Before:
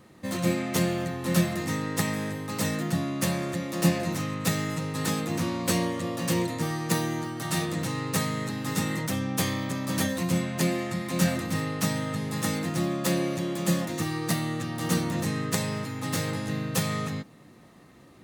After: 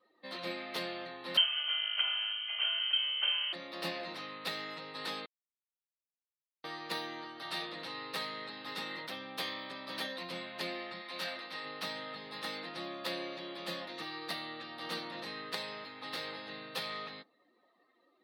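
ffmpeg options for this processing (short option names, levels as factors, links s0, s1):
-filter_complex "[0:a]asettb=1/sr,asplit=3[s0][s1][s2];[s0]atrim=end=1.374[s3];[s1]atrim=start=1.37:end=3.53,asetpts=PTS-STARTPTS,afade=t=in:d=0.004:c=qsin,afade=t=out:st=2.156:d=0.004:c=qsin,lowpass=f=2800:t=q:w=0.5098,lowpass=f=2800:t=q:w=0.6013,lowpass=f=2800:t=q:w=0.9,lowpass=f=2800:t=q:w=2.563,afreqshift=-3300[s4];[s2]atrim=start=3.526[s5];[s3][s4]acrossfade=d=0.004:c1=hsin:c2=qsin[s6];[s6][s5]acrossfade=d=0.004:c1=qsin:c2=hsin,asettb=1/sr,asplit=3[s7][s8][s9];[s7]atrim=end=11.014[s10];[s8]atrim=start=11.01:end=11.65,asetpts=PTS-STARTPTS,afade=t=in:d=0.004:c=qsin,afade=t=out:st=0.636:d=0.004:c=qsin,lowshelf=f=310:g=-10.5[s11];[s9]atrim=start=11.646[s12];[s10][s11]acrossfade=d=0.004:c1=hsin:c2=qsin[s13];[s13][s12]acrossfade=d=0.004:c1=qsin:c2=hsin,asplit=3[s14][s15][s16];[s14]atrim=end=5.26,asetpts=PTS-STARTPTS,afade=t=out:st=5.256:d=0.004:c=hsin[s17];[s15]atrim=start=5.26:end=6.64,asetpts=PTS-STARTPTS,volume=0[s18];[s16]atrim=start=6.64,asetpts=PTS-STARTPTS,afade=t=in:d=0.004:c=hsin[s19];[s17][s18][s19]concat=n=3:v=0:a=1,highpass=480,highshelf=f=5300:t=q:w=3:g=-9,afftdn=nr=16:nf=-53,volume=0.398"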